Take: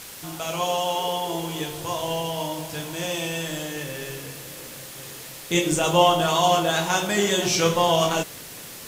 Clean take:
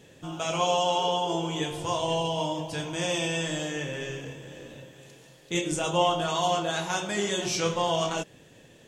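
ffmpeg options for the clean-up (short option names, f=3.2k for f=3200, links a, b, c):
-af "adeclick=t=4,afwtdn=0.011,asetnsamples=n=441:p=0,asendcmd='4.95 volume volume -6.5dB',volume=0dB"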